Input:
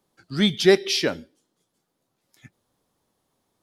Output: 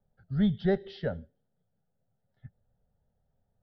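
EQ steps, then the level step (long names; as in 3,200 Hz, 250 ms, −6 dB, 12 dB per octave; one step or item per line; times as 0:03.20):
high-frequency loss of the air 310 metres
spectral tilt −4 dB per octave
phaser with its sweep stopped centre 1,600 Hz, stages 8
−7.0 dB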